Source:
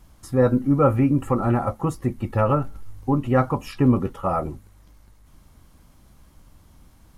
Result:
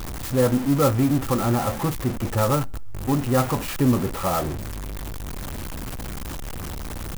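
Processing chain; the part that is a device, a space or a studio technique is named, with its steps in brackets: early CD player with a faulty converter (zero-crossing step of -22.5 dBFS; clock jitter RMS 0.054 ms); gain -3 dB

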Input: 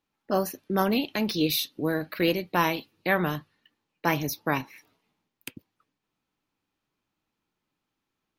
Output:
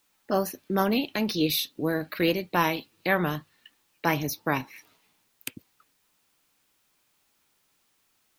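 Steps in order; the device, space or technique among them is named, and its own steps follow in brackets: noise-reduction cassette on a plain deck (mismatched tape noise reduction encoder only; wow and flutter 21 cents; white noise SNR 41 dB)

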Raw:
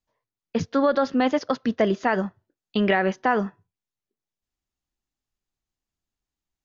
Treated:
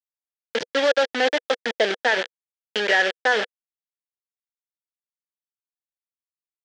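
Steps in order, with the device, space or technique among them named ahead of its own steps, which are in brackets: 2.77–3.36 low shelf 300 Hz -4.5 dB; hand-held game console (bit-crush 4-bit; speaker cabinet 480–5500 Hz, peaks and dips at 490 Hz +8 dB, 1100 Hz -10 dB, 1700 Hz +9 dB, 3200 Hz +7 dB)

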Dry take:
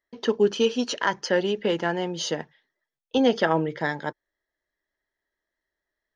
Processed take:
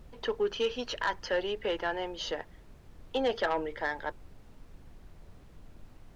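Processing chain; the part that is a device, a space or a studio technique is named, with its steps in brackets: aircraft cabin announcement (BPF 460–3700 Hz; soft clip -17.5 dBFS, distortion -15 dB; brown noise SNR 14 dB); gain -3 dB

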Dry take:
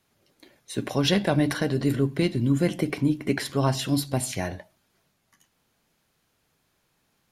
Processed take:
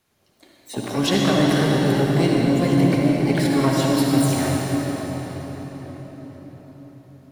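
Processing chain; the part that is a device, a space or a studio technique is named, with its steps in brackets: shimmer-style reverb (harmoniser +12 st -9 dB; reverb RT60 5.5 s, pre-delay 55 ms, DRR -3 dB)

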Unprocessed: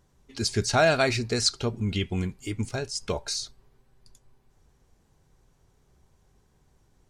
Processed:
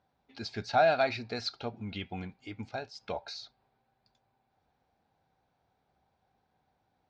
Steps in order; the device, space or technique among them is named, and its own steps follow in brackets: overdrive pedal into a guitar cabinet (overdrive pedal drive 7 dB, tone 5400 Hz, clips at -9 dBFS; speaker cabinet 96–4000 Hz, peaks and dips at 140 Hz -5 dB, 390 Hz -8 dB, 760 Hz +8 dB, 1100 Hz -7 dB, 1900 Hz -6 dB, 3000 Hz -7 dB); gain -5.5 dB

